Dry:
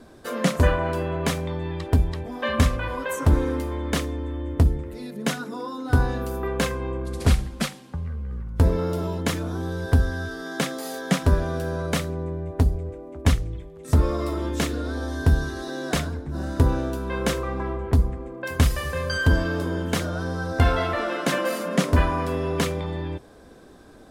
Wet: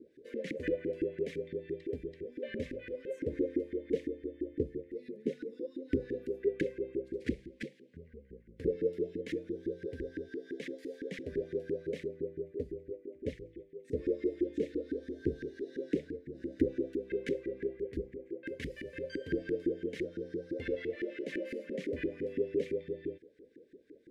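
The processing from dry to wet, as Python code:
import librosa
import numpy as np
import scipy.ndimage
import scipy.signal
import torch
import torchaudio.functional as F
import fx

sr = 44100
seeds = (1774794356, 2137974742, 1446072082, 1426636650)

y = fx.filter_lfo_bandpass(x, sr, shape='saw_up', hz=5.9, low_hz=290.0, high_hz=1700.0, q=6.3)
y = scipy.signal.sosfilt(scipy.signal.ellip(3, 1.0, 40, [470.0, 2000.0], 'bandstop', fs=sr, output='sos'), y)
y = y * librosa.db_to_amplitude(6.0)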